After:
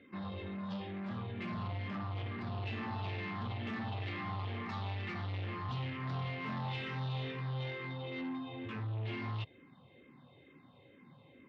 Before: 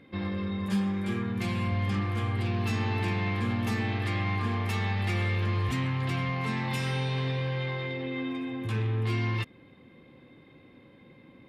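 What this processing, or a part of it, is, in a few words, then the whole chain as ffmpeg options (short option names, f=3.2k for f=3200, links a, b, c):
barber-pole phaser into a guitar amplifier: -filter_complex "[0:a]asplit=2[a][b];[b]afreqshift=-2.2[c];[a][c]amix=inputs=2:normalize=1,asoftclip=type=tanh:threshold=-32.5dB,highpass=110,equalizer=f=200:t=q:w=4:g=-5,equalizer=f=320:t=q:w=4:g=-7,equalizer=f=490:t=q:w=4:g=-5,equalizer=f=1.6k:t=q:w=4:g=-5,equalizer=f=2.3k:t=q:w=4:g=-5,lowpass=f=3.9k:w=0.5412,lowpass=f=3.9k:w=1.3066,volume=1dB"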